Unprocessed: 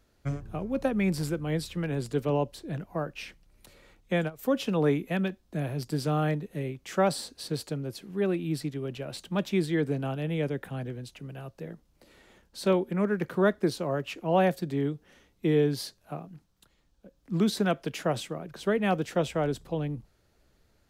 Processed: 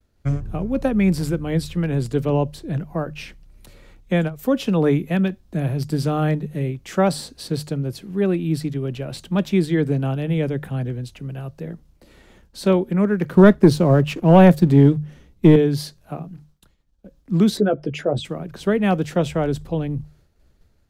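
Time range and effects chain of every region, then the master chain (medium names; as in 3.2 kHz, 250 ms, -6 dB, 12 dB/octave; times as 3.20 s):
13.37–15.56 s: bass shelf 430 Hz +6.5 dB + waveshaping leveller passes 1
17.57–18.25 s: resonances exaggerated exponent 2 + doubling 14 ms -7 dB
whole clip: hum notches 50/100/150 Hz; expander -60 dBFS; bass shelf 190 Hz +10.5 dB; trim +4.5 dB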